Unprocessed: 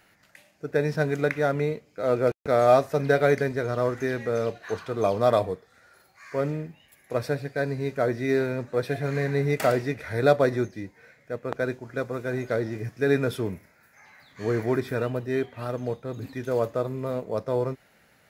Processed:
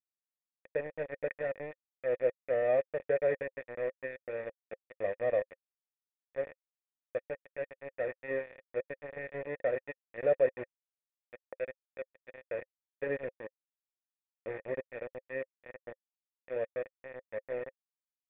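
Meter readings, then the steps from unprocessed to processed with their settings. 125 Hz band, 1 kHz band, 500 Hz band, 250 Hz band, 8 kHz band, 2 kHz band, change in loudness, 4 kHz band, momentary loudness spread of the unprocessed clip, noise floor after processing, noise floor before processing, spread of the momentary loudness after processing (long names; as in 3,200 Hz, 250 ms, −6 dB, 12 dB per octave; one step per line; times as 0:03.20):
−24.0 dB, −17.0 dB, −9.0 dB, −20.0 dB, below −30 dB, −10.5 dB, −10.0 dB, below −20 dB, 12 LU, below −85 dBFS, −61 dBFS, 16 LU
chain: centre clipping without the shift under −20.5 dBFS
formant resonators in series e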